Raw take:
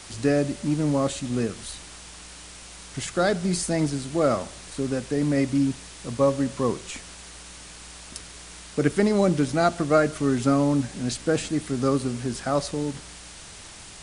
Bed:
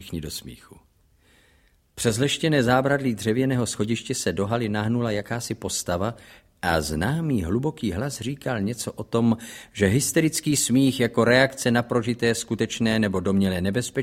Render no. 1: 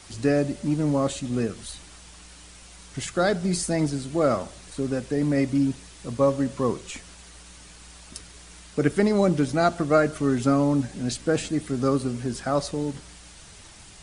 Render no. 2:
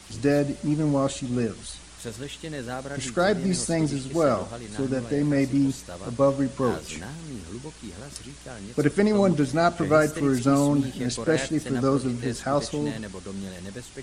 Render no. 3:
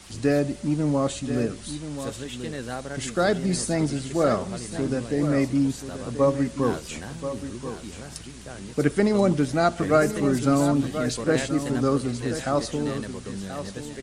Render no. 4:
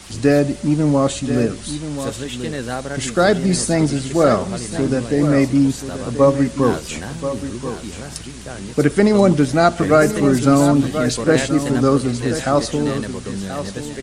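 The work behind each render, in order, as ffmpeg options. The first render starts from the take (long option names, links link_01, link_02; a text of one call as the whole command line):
ffmpeg -i in.wav -af "afftdn=noise_reduction=6:noise_floor=-43" out.wav
ffmpeg -i in.wav -i bed.wav -filter_complex "[1:a]volume=-14dB[link_01];[0:a][link_01]amix=inputs=2:normalize=0" out.wav
ffmpeg -i in.wav -af "aecho=1:1:1032:0.299" out.wav
ffmpeg -i in.wav -af "volume=7.5dB,alimiter=limit=-1dB:level=0:latency=1" out.wav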